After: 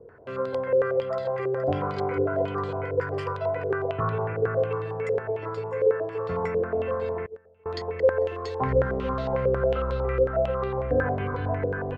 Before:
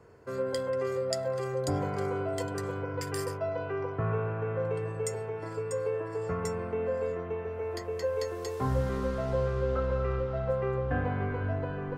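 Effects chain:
slap from a distant wall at 81 metres, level −9 dB
0:07.26–0:07.66: noise gate −27 dBFS, range −27 dB
low-pass on a step sequencer 11 Hz 490–3,900 Hz
level +1 dB

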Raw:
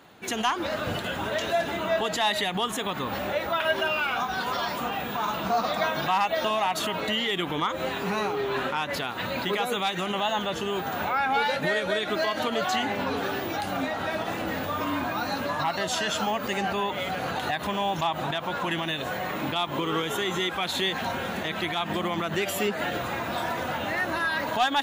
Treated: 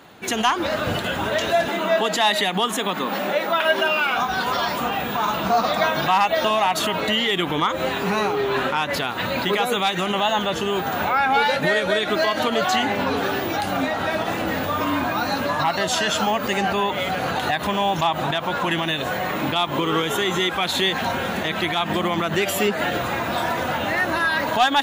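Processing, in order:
0:01.68–0:04.17: Butterworth high-pass 160 Hz 48 dB per octave
level +6 dB

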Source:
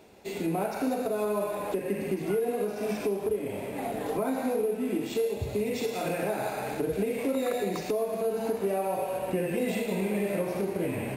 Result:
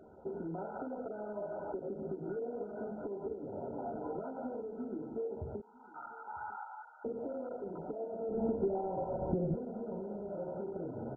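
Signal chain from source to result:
loose part that buzzes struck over −31 dBFS, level −33 dBFS
0:05.60–0:07.05: Chebyshev high-pass filter 860 Hz, order 6
downward compressor 8 to 1, threshold −36 dBFS, peak gain reduction 12 dB
0:08.29–0:09.54: spectral tilt −4.5 dB per octave
double-tracking delay 13 ms −7 dB
single-tap delay 950 ms −21 dB
level −2 dB
MP2 8 kbit/s 16,000 Hz

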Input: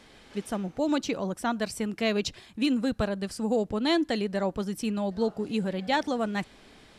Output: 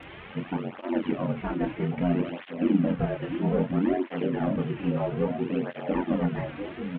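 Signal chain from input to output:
linear delta modulator 16 kbit/s, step −39 dBFS
in parallel at −8 dB: soft clipping −29.5 dBFS, distortion −9 dB
on the sum: double-tracking delay 28 ms −4 dB
ring modulation 45 Hz
echo through a band-pass that steps 698 ms, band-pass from 230 Hz, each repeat 1.4 octaves, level −3 dB
through-zero flanger with one copy inverted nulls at 0.61 Hz, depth 4.9 ms
level +3.5 dB

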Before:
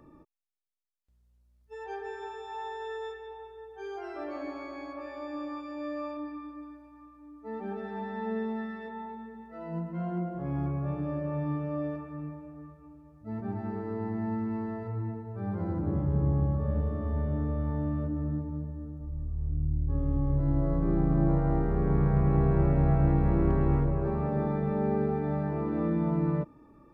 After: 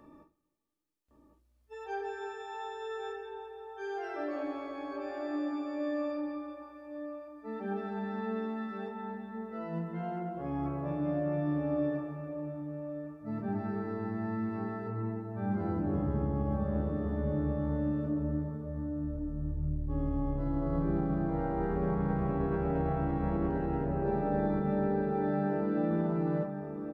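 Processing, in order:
low-shelf EQ 180 Hz −6.5 dB
brickwall limiter −24 dBFS, peak gain reduction 8 dB
0:23.49–0:25.91: notch comb filter 1,100 Hz
slap from a distant wall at 190 metres, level −7 dB
convolution reverb, pre-delay 3 ms, DRR 3 dB

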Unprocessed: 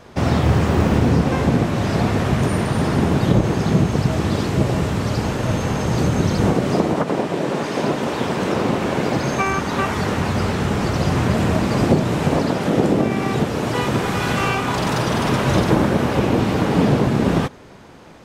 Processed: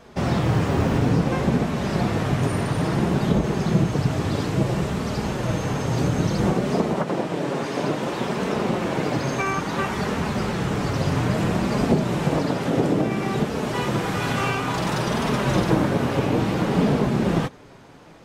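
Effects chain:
flanger 0.59 Hz, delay 4.4 ms, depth 3.2 ms, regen −41%

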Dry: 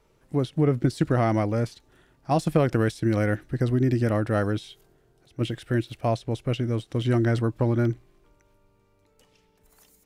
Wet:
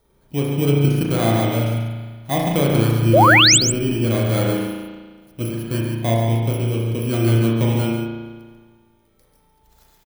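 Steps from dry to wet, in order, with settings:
samples in bit-reversed order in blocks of 16 samples
spring reverb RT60 1.5 s, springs 35 ms, chirp 65 ms, DRR −2 dB
sound drawn into the spectrogram rise, 0:03.13–0:03.58, 480–8,600 Hz −12 dBFS
on a send: single-tap delay 141 ms −7.5 dB

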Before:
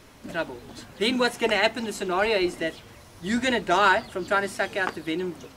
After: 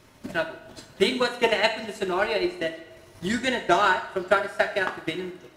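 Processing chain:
transient designer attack +10 dB, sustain −8 dB
coupled-rooms reverb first 0.5 s, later 2.2 s, from −18 dB, DRR 4.5 dB
level −5 dB

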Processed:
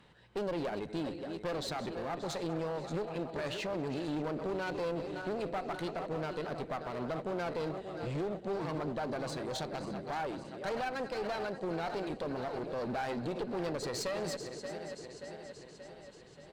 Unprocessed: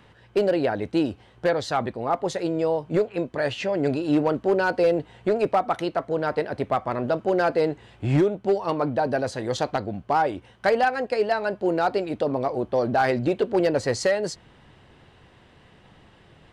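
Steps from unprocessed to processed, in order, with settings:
feedback delay that plays each chunk backwards 290 ms, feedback 76%, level −12.5 dB
brickwall limiter −18 dBFS, peak gain reduction 7 dB
thirty-one-band graphic EQ 100 Hz −10 dB, 160 Hz +5 dB, 4,000 Hz +6 dB, 8,000 Hz +4 dB
on a send: single-tap delay 196 ms −23.5 dB
on the sum: asymmetric clip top −29.5 dBFS
level −8 dB

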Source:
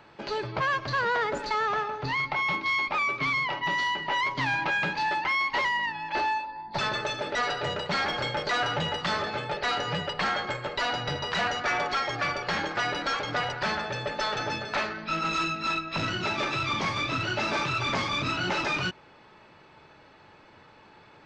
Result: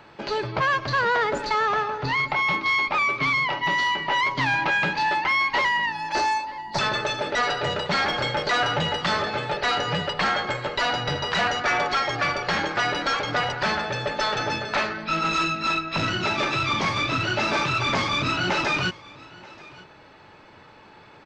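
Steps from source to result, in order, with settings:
0:05.92–0:06.79: high shelf with overshoot 4,500 Hz +10.5 dB, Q 1.5
single-tap delay 932 ms −22 dB
level +4.5 dB

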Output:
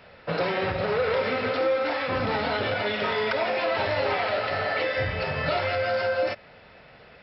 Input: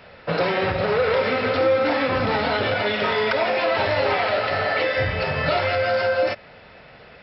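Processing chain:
0:01.49–0:02.07: parametric band 60 Hz → 240 Hz −13.5 dB 1.4 octaves
level −4.5 dB

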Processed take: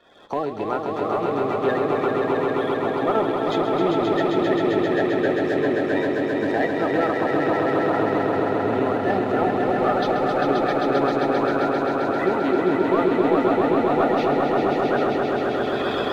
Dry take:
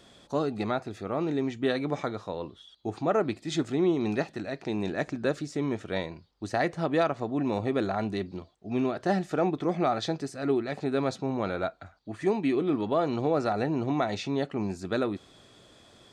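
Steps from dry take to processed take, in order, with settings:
spectral magnitudes quantised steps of 30 dB
camcorder AGC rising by 31 dB per second
three-way crossover with the lows and the highs turned down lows −16 dB, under 290 Hz, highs −21 dB, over 3,500 Hz
leveller curve on the samples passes 1
low-shelf EQ 400 Hz +4.5 dB
echo that builds up and dies away 132 ms, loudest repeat 5, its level −4.5 dB

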